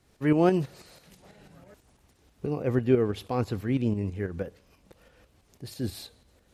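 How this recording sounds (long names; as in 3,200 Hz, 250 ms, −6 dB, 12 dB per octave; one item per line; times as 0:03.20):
tremolo saw up 6.1 Hz, depth 55%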